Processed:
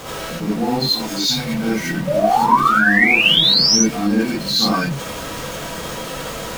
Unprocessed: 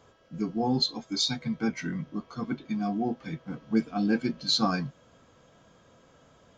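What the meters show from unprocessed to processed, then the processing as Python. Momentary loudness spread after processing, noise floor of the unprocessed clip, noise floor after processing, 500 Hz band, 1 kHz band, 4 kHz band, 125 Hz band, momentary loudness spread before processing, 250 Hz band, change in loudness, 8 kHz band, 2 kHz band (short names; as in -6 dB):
17 LU, -60 dBFS, -29 dBFS, +13.5 dB, +18.0 dB, +15.5 dB, +10.0 dB, 11 LU, +8.5 dB, +14.5 dB, n/a, +23.5 dB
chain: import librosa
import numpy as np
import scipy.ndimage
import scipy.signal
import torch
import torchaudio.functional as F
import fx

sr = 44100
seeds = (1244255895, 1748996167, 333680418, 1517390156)

y = x + 0.5 * 10.0 ** (-29.0 / 20.0) * np.sign(x)
y = fx.spec_paint(y, sr, seeds[0], shape='rise', start_s=2.07, length_s=1.7, low_hz=560.0, high_hz=6200.0, level_db=-21.0)
y = fx.rev_gated(y, sr, seeds[1], gate_ms=110, shape='rising', drr_db=-7.0)
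y = F.gain(torch.from_numpy(y), -1.0).numpy()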